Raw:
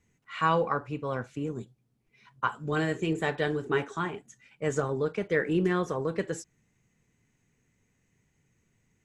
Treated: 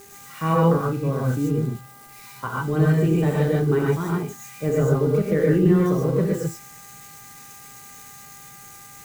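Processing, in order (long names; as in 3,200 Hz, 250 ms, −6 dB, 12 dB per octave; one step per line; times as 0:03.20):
spike at every zero crossing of −29.5 dBFS
hum with harmonics 400 Hz, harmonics 5, −49 dBFS −2 dB per octave
tilt shelving filter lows +9 dB, about 680 Hz
reverb whose tail is shaped and stops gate 160 ms rising, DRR −3.5 dB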